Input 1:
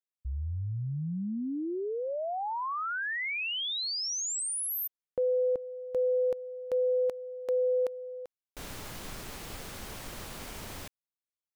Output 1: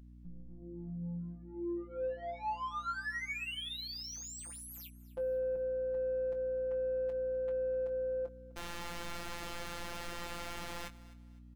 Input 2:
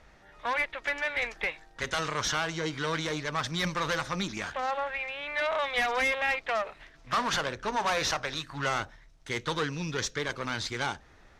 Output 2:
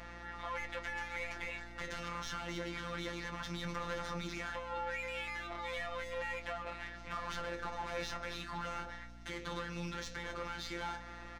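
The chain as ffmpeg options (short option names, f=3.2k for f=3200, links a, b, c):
-filter_complex "[0:a]acrossover=split=120[a][b];[b]acompressor=threshold=-40dB:ratio=10:attack=2.6:release=55:knee=6:detection=rms[c];[a][c]amix=inputs=2:normalize=0,aeval=exprs='0.0376*sin(PI/2*1.58*val(0)/0.0376)':c=same,asplit=2[d][e];[e]highpass=f=720:p=1,volume=15dB,asoftclip=type=tanh:threshold=-28dB[f];[d][f]amix=inputs=2:normalize=0,lowpass=f=2.3k:p=1,volume=-6dB,afftfilt=real='hypot(re,im)*cos(PI*b)':imag='0':win_size=1024:overlap=0.75,aeval=exprs='val(0)+0.00316*(sin(2*PI*60*n/s)+sin(2*PI*2*60*n/s)/2+sin(2*PI*3*60*n/s)/3+sin(2*PI*4*60*n/s)/4+sin(2*PI*5*60*n/s)/5)':c=same,asplit=2[g][h];[h]adelay=21,volume=-9dB[i];[g][i]amix=inputs=2:normalize=0,asplit=2[j][k];[k]aecho=0:1:254|508|762:0.112|0.0337|0.0101[l];[j][l]amix=inputs=2:normalize=0,volume=-2.5dB"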